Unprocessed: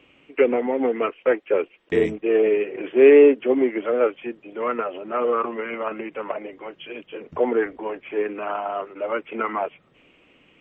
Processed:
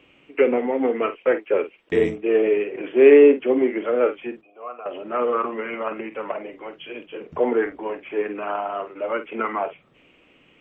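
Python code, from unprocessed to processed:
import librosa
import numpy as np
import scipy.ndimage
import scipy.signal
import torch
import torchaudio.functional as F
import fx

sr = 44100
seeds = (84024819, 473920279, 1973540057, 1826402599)

y = fx.vowel_filter(x, sr, vowel='a', at=(4.41, 4.86))
y = fx.doubler(y, sr, ms=49.0, db=-11.0)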